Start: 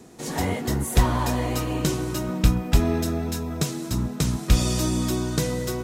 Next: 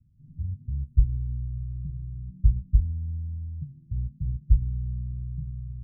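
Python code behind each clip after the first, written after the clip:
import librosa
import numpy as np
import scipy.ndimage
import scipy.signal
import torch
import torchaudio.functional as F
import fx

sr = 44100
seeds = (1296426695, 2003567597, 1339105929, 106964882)

y = scipy.signal.sosfilt(scipy.signal.cheby2(4, 70, 510.0, 'lowpass', fs=sr, output='sos'), x)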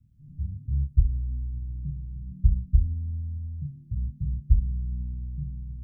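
y = fx.doubler(x, sr, ms=28.0, db=-2.5)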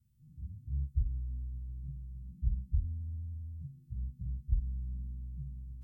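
y = fx.freq_snap(x, sr, grid_st=2)
y = y * librosa.db_to_amplitude(-8.0)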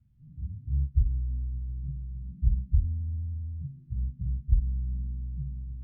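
y = fx.air_absorb(x, sr, metres=460.0)
y = y * librosa.db_to_amplitude(7.5)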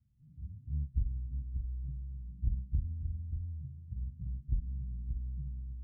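y = fx.tube_stage(x, sr, drive_db=15.0, bias=0.55)
y = y + 10.0 ** (-8.5 / 20.0) * np.pad(y, (int(582 * sr / 1000.0), 0))[:len(y)]
y = fx.record_warp(y, sr, rpm=45.0, depth_cents=100.0)
y = y * librosa.db_to_amplitude(-5.5)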